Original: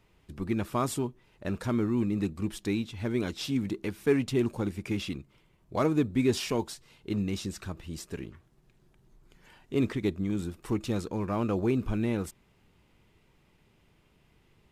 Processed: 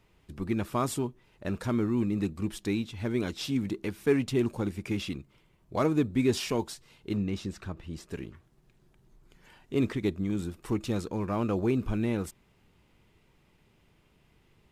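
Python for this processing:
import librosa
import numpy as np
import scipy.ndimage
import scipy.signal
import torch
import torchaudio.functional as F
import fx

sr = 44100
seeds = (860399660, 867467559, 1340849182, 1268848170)

y = fx.high_shelf(x, sr, hz=4900.0, db=-11.5, at=(7.17, 8.09))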